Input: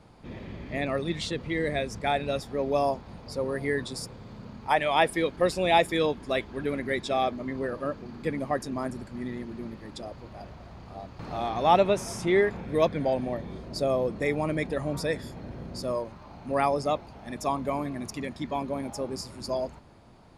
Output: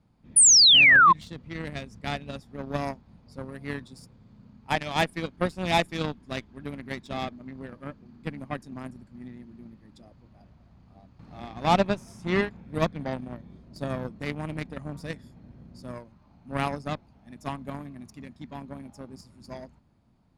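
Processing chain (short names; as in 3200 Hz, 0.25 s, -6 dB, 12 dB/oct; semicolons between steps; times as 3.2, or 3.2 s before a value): added harmonics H 3 -22 dB, 5 -29 dB, 7 -19 dB, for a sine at -7.5 dBFS; resonant low shelf 310 Hz +6.5 dB, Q 1.5; painted sound fall, 0.36–1.13, 990–10000 Hz -15 dBFS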